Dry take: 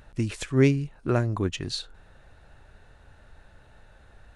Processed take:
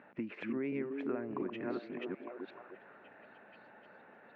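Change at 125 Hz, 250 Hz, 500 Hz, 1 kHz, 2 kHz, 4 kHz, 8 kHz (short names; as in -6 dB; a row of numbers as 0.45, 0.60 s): -26.5 dB, -10.0 dB, -10.0 dB, -9.0 dB, -10.0 dB, -21.5 dB, under -35 dB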